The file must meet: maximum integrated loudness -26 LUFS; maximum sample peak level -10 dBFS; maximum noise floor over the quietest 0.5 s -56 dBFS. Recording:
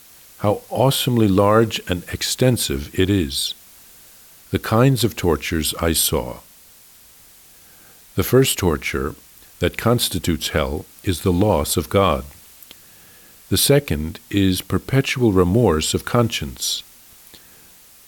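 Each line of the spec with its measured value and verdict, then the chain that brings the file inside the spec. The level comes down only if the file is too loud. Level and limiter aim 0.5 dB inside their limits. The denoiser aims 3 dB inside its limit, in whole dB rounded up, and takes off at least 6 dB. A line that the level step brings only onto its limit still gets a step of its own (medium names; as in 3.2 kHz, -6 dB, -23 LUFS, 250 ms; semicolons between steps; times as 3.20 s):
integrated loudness -19.0 LUFS: fail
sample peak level -4.0 dBFS: fail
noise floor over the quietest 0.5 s -48 dBFS: fail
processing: noise reduction 6 dB, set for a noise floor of -48 dBFS; trim -7.5 dB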